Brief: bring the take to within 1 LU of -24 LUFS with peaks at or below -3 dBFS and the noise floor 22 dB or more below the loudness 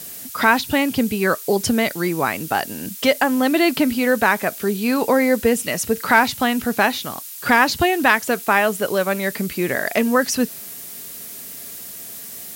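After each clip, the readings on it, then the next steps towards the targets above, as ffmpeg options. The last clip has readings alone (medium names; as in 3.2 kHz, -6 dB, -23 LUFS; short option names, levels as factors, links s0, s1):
noise floor -35 dBFS; noise floor target -41 dBFS; loudness -19.0 LUFS; peak level -1.5 dBFS; loudness target -24.0 LUFS
-> -af "afftdn=nr=6:nf=-35"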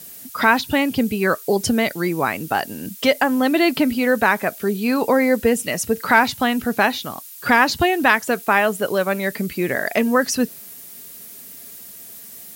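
noise floor -39 dBFS; noise floor target -41 dBFS
-> -af "afftdn=nr=6:nf=-39"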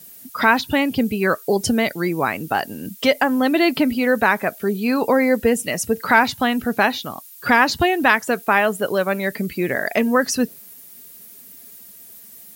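noise floor -43 dBFS; loudness -19.0 LUFS; peak level -1.5 dBFS; loudness target -24.0 LUFS
-> -af "volume=0.562"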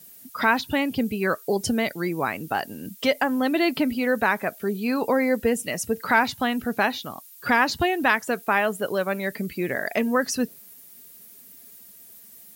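loudness -24.0 LUFS; peak level -6.5 dBFS; noise floor -48 dBFS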